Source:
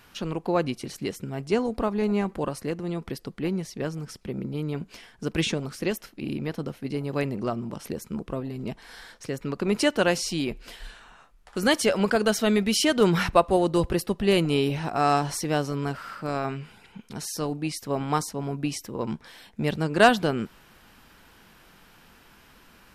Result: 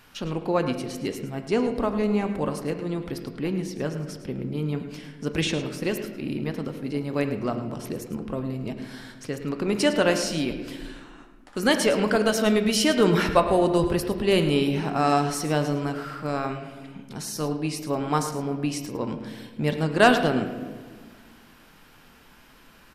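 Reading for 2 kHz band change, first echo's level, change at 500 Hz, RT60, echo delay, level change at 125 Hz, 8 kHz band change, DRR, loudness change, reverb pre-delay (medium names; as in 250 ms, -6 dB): +1.0 dB, -12.5 dB, +1.5 dB, 1.5 s, 107 ms, +1.0 dB, +0.5 dB, 6.0 dB, +1.0 dB, 4 ms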